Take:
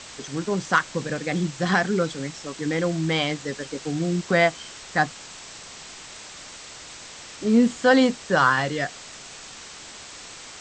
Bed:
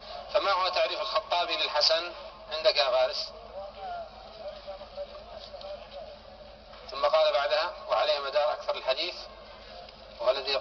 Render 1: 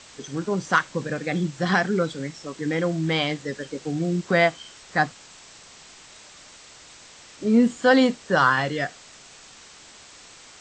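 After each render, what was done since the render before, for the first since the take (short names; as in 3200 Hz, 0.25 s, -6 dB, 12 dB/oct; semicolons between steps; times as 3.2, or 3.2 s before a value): noise print and reduce 6 dB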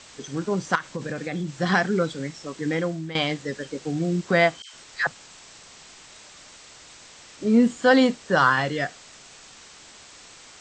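0.75–1.52 compressor 5:1, threshold -25 dBFS; 2.74–3.15 fade out, to -14.5 dB; 4.62–5.07 dispersion lows, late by 0.117 s, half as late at 1200 Hz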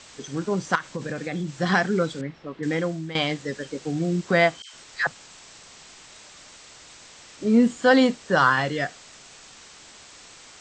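2.21–2.63 air absorption 360 m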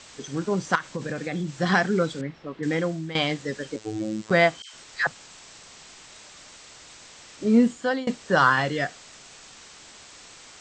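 3.76–4.31 robotiser 108 Hz; 7.58–8.07 fade out, to -23.5 dB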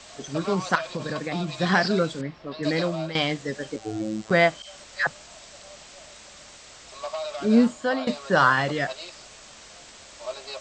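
add bed -8.5 dB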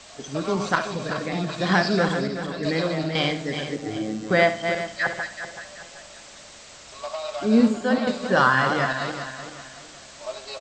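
regenerating reverse delay 0.19 s, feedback 59%, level -6.5 dB; feedback echo 69 ms, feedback 35%, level -12.5 dB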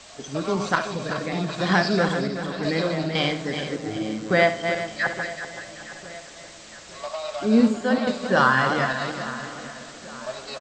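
feedback echo 0.861 s, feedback 50%, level -17 dB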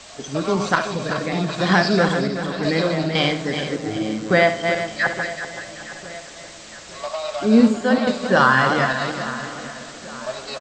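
gain +4 dB; limiter -3 dBFS, peak gain reduction 2 dB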